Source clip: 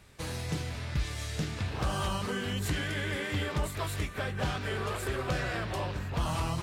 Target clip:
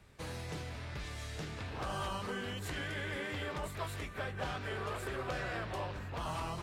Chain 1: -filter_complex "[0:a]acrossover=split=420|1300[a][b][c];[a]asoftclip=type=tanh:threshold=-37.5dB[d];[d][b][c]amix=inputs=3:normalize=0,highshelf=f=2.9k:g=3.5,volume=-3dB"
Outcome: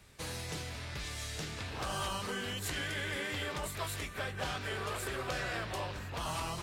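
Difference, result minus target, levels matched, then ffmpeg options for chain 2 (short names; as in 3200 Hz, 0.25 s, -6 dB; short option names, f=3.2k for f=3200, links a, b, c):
8000 Hz band +6.5 dB
-filter_complex "[0:a]acrossover=split=420|1300[a][b][c];[a]asoftclip=type=tanh:threshold=-37.5dB[d];[d][b][c]amix=inputs=3:normalize=0,highshelf=f=2.9k:g=-6.5,volume=-3dB"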